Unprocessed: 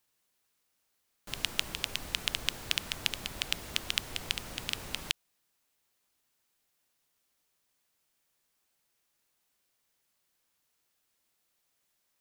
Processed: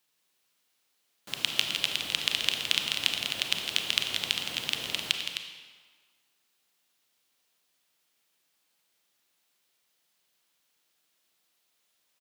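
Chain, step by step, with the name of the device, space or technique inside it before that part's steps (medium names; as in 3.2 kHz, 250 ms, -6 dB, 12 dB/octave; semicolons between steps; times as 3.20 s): stadium PA (high-pass 140 Hz 12 dB/octave; peaking EQ 3.4 kHz +5 dB 1.2 oct; loudspeakers at several distances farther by 57 m -9 dB, 89 m -8 dB; reverberation RT60 1.6 s, pre-delay 27 ms, DRR 5.5 dB)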